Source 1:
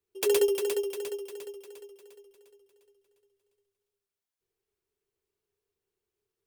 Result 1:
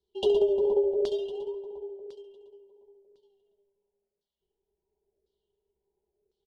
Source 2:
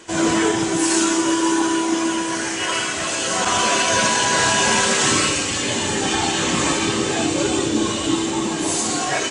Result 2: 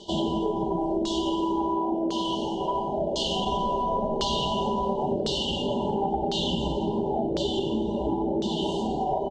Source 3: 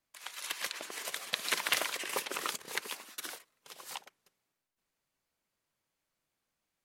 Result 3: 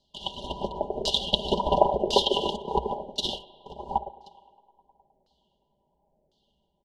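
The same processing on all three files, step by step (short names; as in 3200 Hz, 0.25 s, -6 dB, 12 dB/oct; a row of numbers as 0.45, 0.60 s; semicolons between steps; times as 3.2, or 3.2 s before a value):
high shelf 4100 Hz -6 dB; in parallel at -10.5 dB: decimation with a swept rate 31×, swing 100% 0.32 Hz; on the sum: brick-wall FIR band-stop 1000–2800 Hz; bell 63 Hz +13 dB 0.36 oct; comb 5 ms, depth 62%; band-limited delay 0.104 s, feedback 79%, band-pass 730 Hz, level -20.5 dB; LFO low-pass saw down 0.95 Hz 510–4600 Hz; compressor, threshold -21 dBFS; spring tank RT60 1.6 s, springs 35 ms, chirp 75 ms, DRR 17.5 dB; match loudness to -27 LUFS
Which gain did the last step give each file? +1.0, -2.5, +13.0 dB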